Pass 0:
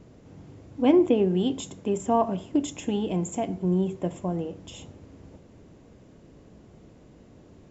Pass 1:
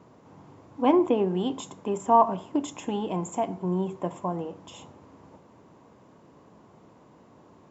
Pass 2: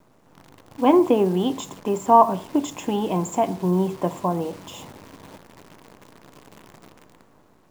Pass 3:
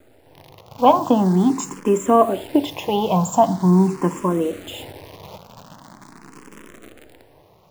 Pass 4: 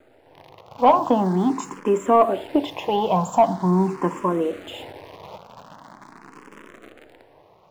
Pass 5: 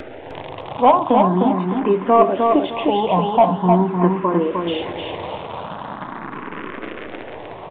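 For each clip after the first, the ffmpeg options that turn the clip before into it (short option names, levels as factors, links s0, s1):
-af "highpass=120,equalizer=f=1000:t=o:w=0.88:g=14,volume=0.668"
-af "dynaudnorm=f=110:g=13:m=2.11,acrusher=bits=8:dc=4:mix=0:aa=0.000001"
-filter_complex "[0:a]asplit=2[s0][s1];[s1]afreqshift=0.43[s2];[s0][s2]amix=inputs=2:normalize=1,volume=2.51"
-filter_complex "[0:a]asplit=2[s0][s1];[s1]highpass=f=720:p=1,volume=3.55,asoftclip=type=tanh:threshold=0.891[s2];[s0][s2]amix=inputs=2:normalize=0,lowpass=f=1500:p=1,volume=0.501,volume=0.75"
-af "aresample=8000,aresample=44100,acompressor=mode=upward:threshold=0.0794:ratio=2.5,aecho=1:1:306|612|918|1224:0.631|0.17|0.046|0.0124,volume=1.33"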